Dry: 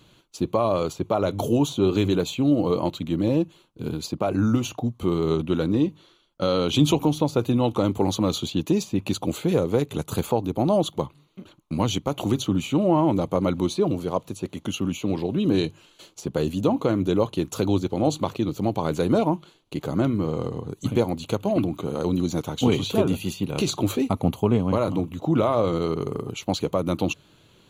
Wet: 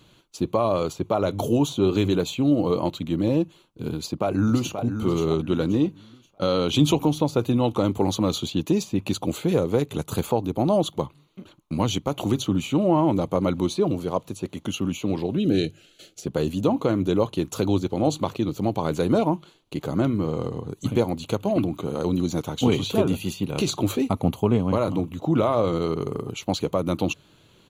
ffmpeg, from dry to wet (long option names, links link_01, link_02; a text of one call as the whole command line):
ffmpeg -i in.wav -filter_complex "[0:a]asplit=2[link_01][link_02];[link_02]afade=type=in:start_time=3.94:duration=0.01,afade=type=out:start_time=4.81:duration=0.01,aecho=0:1:530|1060|1590|2120:0.398107|0.119432|0.0358296|0.0107489[link_03];[link_01][link_03]amix=inputs=2:normalize=0,asettb=1/sr,asplit=3[link_04][link_05][link_06];[link_04]atrim=end=15.374[link_07];[link_05]atrim=start=15.37:end=16.26,asetpts=PTS-STARTPTS,afade=type=in:duration=0.004:curve=qsin,afade=type=out:start_time=0.886:duration=0.004:curve=qsin,asuperstop=centerf=1000:order=4:qfactor=1.6[link_08];[link_06]atrim=start=16.256[link_09];[link_07][link_08]acrossfade=duration=0.004:curve1=hsin:curve2=qsin[link_10];[link_10][link_09]acrossfade=duration=0.004:curve1=qsin:curve2=hsin" out.wav